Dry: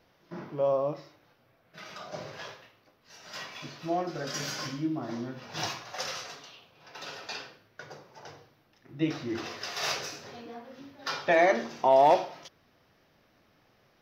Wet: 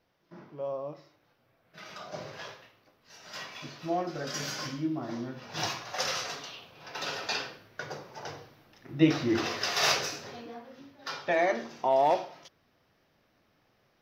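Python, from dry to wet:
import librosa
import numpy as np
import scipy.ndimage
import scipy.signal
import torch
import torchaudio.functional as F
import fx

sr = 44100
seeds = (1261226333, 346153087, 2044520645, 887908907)

y = fx.gain(x, sr, db=fx.line((0.81, -8.5), (1.93, -0.5), (5.44, -0.5), (6.37, 6.5), (9.79, 6.5), (10.95, -4.0)))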